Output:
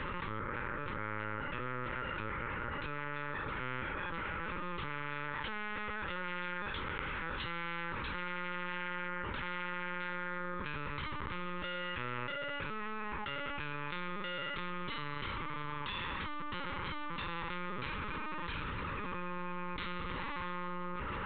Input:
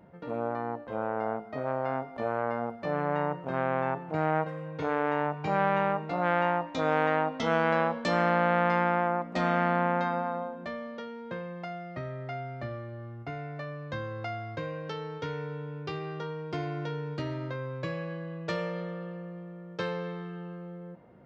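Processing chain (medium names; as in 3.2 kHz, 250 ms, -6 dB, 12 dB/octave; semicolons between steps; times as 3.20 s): tilt EQ +3.5 dB/octave; de-hum 392.9 Hz, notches 36; peak limiter -25 dBFS, peak gain reduction 11.5 dB; flange 0.67 Hz, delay 9.7 ms, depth 8 ms, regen -86%; frequency shift +290 Hz; ring modulator 430 Hz; reverberation RT60 1.7 s, pre-delay 6 ms, DRR 18 dB; LPC vocoder at 8 kHz pitch kept; Butterworth band-stop 700 Hz, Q 2.8; level flattener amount 100%; trim +1 dB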